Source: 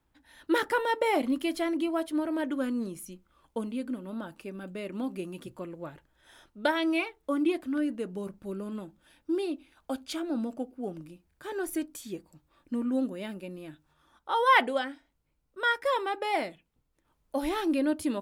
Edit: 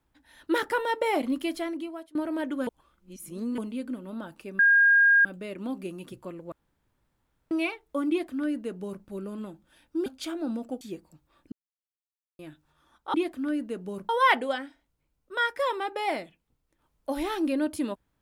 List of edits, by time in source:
1.47–2.15 s: fade out, to -23.5 dB
2.67–3.58 s: reverse
4.59 s: add tone 1.62 kHz -15.5 dBFS 0.66 s
5.86–6.85 s: room tone
7.43–8.38 s: copy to 14.35 s
9.40–9.94 s: delete
10.69–12.02 s: delete
12.73–13.60 s: mute

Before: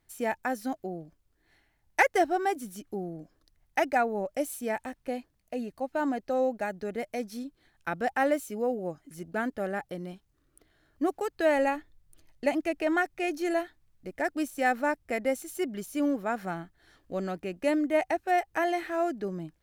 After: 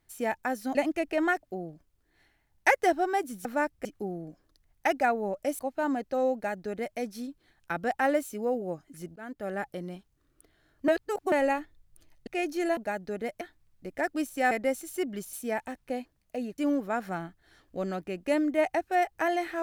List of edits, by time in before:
4.51–5.76 s: move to 15.94 s
6.51–7.15 s: copy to 13.62 s
9.33–9.77 s: fade in, from -20 dB
11.05–11.49 s: reverse
12.44–13.12 s: move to 0.75 s
14.72–15.12 s: move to 2.77 s

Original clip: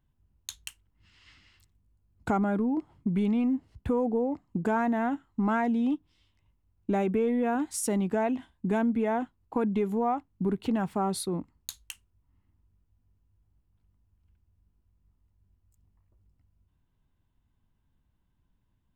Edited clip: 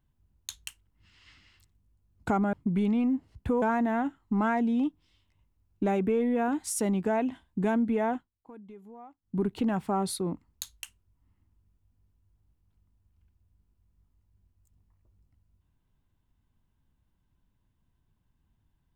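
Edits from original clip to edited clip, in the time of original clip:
2.53–2.93 s: delete
4.02–4.69 s: delete
9.20–10.46 s: dip -20.5 dB, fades 0.18 s

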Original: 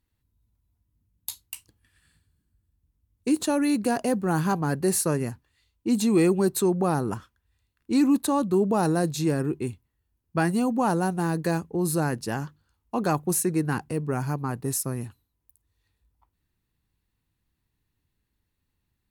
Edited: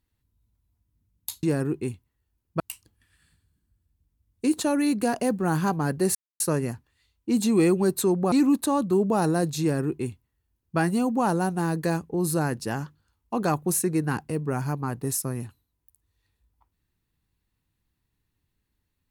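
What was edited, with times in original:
4.98 s: insert silence 0.25 s
6.90–7.93 s: delete
9.22–10.39 s: copy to 1.43 s

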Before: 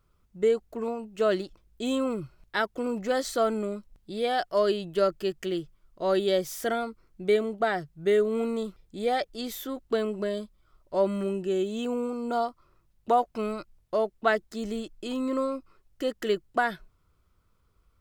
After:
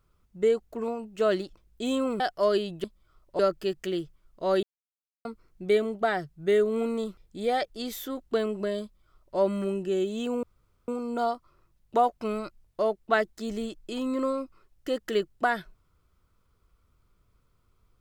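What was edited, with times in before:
2.20–4.34 s: delete
6.22–6.84 s: mute
10.42–10.97 s: copy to 4.98 s
12.02 s: insert room tone 0.45 s

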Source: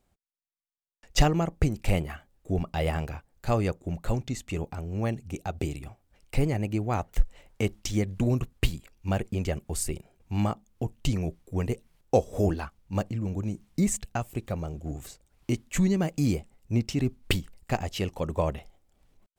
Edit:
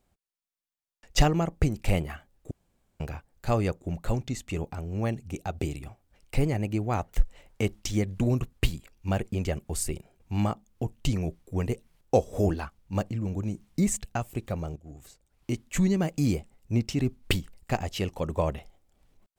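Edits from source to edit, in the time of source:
2.51–3.00 s: room tone
14.76–15.85 s: fade in, from -14.5 dB

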